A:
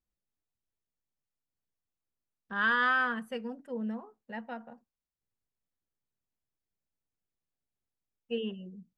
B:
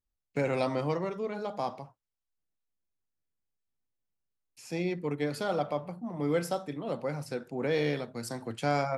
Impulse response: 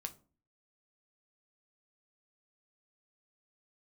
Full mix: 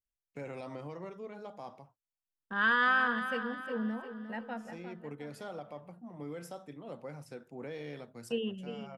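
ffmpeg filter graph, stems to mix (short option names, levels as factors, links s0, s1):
-filter_complex "[0:a]agate=range=0.0224:threshold=0.002:ratio=3:detection=peak,volume=1,asplit=3[s0][s1][s2];[s1]volume=0.316[s3];[1:a]equalizer=f=4400:t=o:w=0.22:g=-7,alimiter=limit=0.0668:level=0:latency=1:release=85,volume=0.316[s4];[s2]apad=whole_len=395906[s5];[s4][s5]sidechaincompress=threshold=0.00891:ratio=8:attack=32:release=1070[s6];[s3]aecho=0:1:354|708|1062|1416|1770|2124:1|0.44|0.194|0.0852|0.0375|0.0165[s7];[s0][s6][s7]amix=inputs=3:normalize=0"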